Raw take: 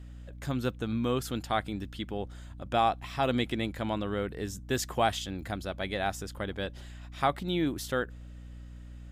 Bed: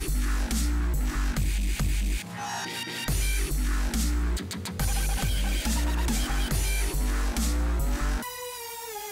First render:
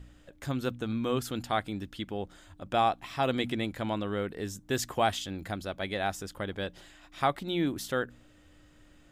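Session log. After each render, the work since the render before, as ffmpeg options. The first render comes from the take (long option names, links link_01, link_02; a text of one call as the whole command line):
ffmpeg -i in.wav -af "bandreject=frequency=60:width_type=h:width=4,bandreject=frequency=120:width_type=h:width=4,bandreject=frequency=180:width_type=h:width=4,bandreject=frequency=240:width_type=h:width=4" out.wav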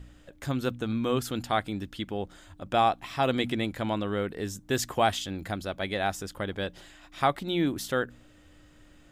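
ffmpeg -i in.wav -af "volume=2.5dB" out.wav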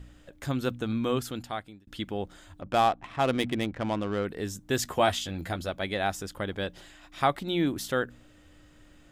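ffmpeg -i in.wav -filter_complex "[0:a]asettb=1/sr,asplit=3[link_01][link_02][link_03];[link_01]atrim=end=2.614[link_04];[link_02]atrim=start=2.61:end=4.25,asetpts=PTS-STARTPTS,afade=type=in:duration=0.004:curve=qsin,afade=type=out:start_time=1.636:duration=0.004:curve=qsin,adynamicsmooth=sensitivity=5:basefreq=1300[link_05];[link_03]atrim=start=4.246[link_06];[link_04][link_05]acrossfade=duration=0.004:curve1=hsin:curve2=qsin[link_07];[link_07][link_06]acrossfade=duration=0.004:curve1=qsin:curve2=hsin,asettb=1/sr,asplit=3[link_08][link_09][link_10];[link_08]atrim=end=4.844[link_11];[link_09]atrim=start=4.84:end=5.7,asetpts=PTS-STARTPTS,afade=type=in:duration=0.004:curve=qsin,afade=type=out:start_time=0.856:duration=0.004:curve=qsin,asplit=2[link_12][link_13];[link_13]adelay=12,volume=-5.5dB[link_14];[link_12][link_14]amix=inputs=2:normalize=0,atrim=end_sample=37926[link_15];[link_10]atrim=start=5.696[link_16];[link_11][link_15]acrossfade=duration=0.004:curve1=hsin:curve2=qsin[link_17];[link_17][link_16]acrossfade=duration=0.004:curve1=qsin:curve2=hsin,asplit=2[link_18][link_19];[link_18]atrim=end=1.87,asetpts=PTS-STARTPTS,afade=type=out:start_time=1.07:duration=0.8[link_20];[link_19]atrim=start=1.87,asetpts=PTS-STARTPTS,afade=type=in:duration=0.004:curve=hsin[link_21];[link_20][link_21]concat=n=2:v=0:a=1" out.wav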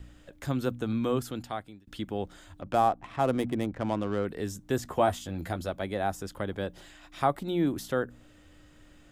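ffmpeg -i in.wav -filter_complex "[0:a]acrossover=split=290|1400|6800[link_01][link_02][link_03][link_04];[link_03]acompressor=threshold=-45dB:ratio=6[link_05];[link_04]alimiter=level_in=12dB:limit=-24dB:level=0:latency=1:release=351,volume=-12dB[link_06];[link_01][link_02][link_05][link_06]amix=inputs=4:normalize=0" out.wav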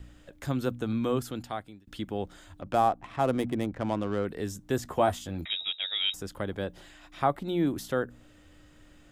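ffmpeg -i in.wav -filter_complex "[0:a]asettb=1/sr,asplit=3[link_01][link_02][link_03];[link_01]atrim=end=5.454[link_04];[link_02]atrim=start=5.45:end=6.14,asetpts=PTS-STARTPTS,afade=type=in:duration=0.004:curve=qsin,afade=type=out:start_time=0.686:duration=0.004:curve=qsin,lowpass=frequency=3300:width_type=q:width=0.5098,lowpass=frequency=3300:width_type=q:width=0.6013,lowpass=frequency=3300:width_type=q:width=0.9,lowpass=frequency=3300:width_type=q:width=2.563,afreqshift=-3900[link_05];[link_03]atrim=start=6.136[link_06];[link_04][link_05]acrossfade=duration=0.004:curve1=hsin:curve2=qsin[link_07];[link_07][link_06]acrossfade=duration=0.004:curve1=qsin:curve2=hsin,asettb=1/sr,asplit=3[link_08][link_09][link_10];[link_08]atrim=end=6.644[link_11];[link_09]atrim=start=6.64:end=7.49,asetpts=PTS-STARTPTS,afade=type=in:duration=0.004:curve=qsin,afade=type=out:start_time=0.846:duration=0.004:curve=qsin,acrossover=split=3900[link_12][link_13];[link_13]acompressor=threshold=-57dB:ratio=4:attack=1:release=60[link_14];[link_12][link_14]amix=inputs=2:normalize=0[link_15];[link_10]atrim=start=7.486[link_16];[link_11][link_15]acrossfade=duration=0.004:curve1=hsin:curve2=qsin[link_17];[link_17][link_16]acrossfade=duration=0.004:curve1=qsin:curve2=hsin" out.wav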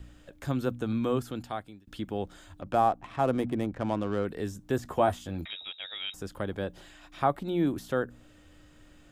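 ffmpeg -i in.wav -filter_complex "[0:a]bandreject=frequency=2000:width=21,acrossover=split=2500[link_01][link_02];[link_02]acompressor=threshold=-45dB:ratio=4:attack=1:release=60[link_03];[link_01][link_03]amix=inputs=2:normalize=0" out.wav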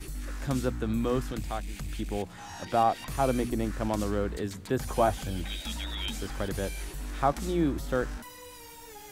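ffmpeg -i in.wav -i bed.wav -filter_complex "[1:a]volume=-10.5dB[link_01];[0:a][link_01]amix=inputs=2:normalize=0" out.wav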